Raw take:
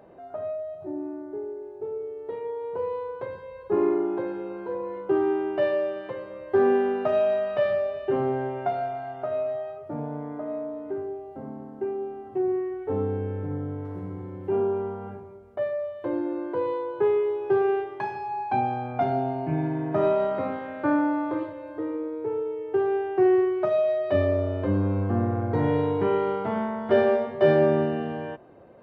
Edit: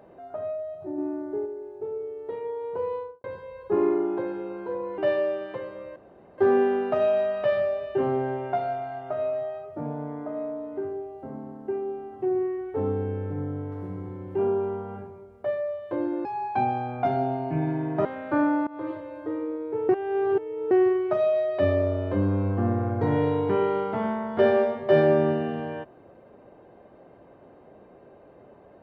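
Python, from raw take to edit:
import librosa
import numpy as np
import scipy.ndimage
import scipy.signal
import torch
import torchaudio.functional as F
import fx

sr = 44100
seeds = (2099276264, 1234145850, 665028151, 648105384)

y = fx.studio_fade_out(x, sr, start_s=2.94, length_s=0.3)
y = fx.edit(y, sr, fx.clip_gain(start_s=0.98, length_s=0.48, db=4.0),
    fx.cut(start_s=4.98, length_s=0.55),
    fx.insert_room_tone(at_s=6.51, length_s=0.42),
    fx.cut(start_s=16.38, length_s=1.83),
    fx.cut(start_s=20.01, length_s=0.56),
    fx.fade_in_from(start_s=21.19, length_s=0.29, floor_db=-21.5),
    fx.reverse_span(start_s=22.41, length_s=0.82), tone=tone)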